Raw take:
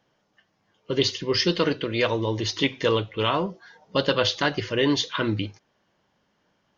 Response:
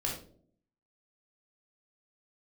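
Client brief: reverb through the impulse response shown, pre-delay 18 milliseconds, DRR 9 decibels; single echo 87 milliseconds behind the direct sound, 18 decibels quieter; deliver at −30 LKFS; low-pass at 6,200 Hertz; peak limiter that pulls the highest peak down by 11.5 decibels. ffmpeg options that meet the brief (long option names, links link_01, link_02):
-filter_complex "[0:a]lowpass=6200,alimiter=limit=-18dB:level=0:latency=1,aecho=1:1:87:0.126,asplit=2[link_01][link_02];[1:a]atrim=start_sample=2205,adelay=18[link_03];[link_02][link_03]afir=irnorm=-1:irlink=0,volume=-13.5dB[link_04];[link_01][link_04]amix=inputs=2:normalize=0,volume=-2dB"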